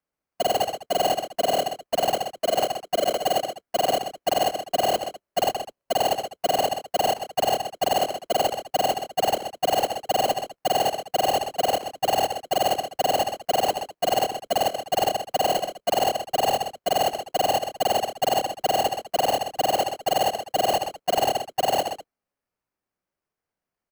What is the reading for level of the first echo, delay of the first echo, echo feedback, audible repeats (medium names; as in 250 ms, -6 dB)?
-9.0 dB, 77 ms, no regular repeats, 3